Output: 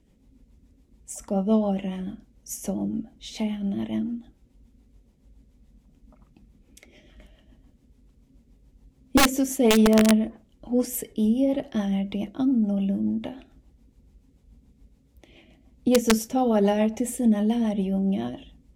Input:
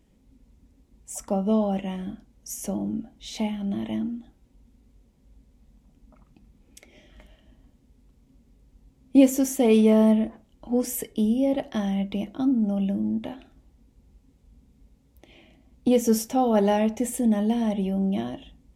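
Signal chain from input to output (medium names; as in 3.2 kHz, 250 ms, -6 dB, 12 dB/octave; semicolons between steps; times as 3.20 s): integer overflow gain 10.5 dB; rotary cabinet horn 7 Hz; trim +2 dB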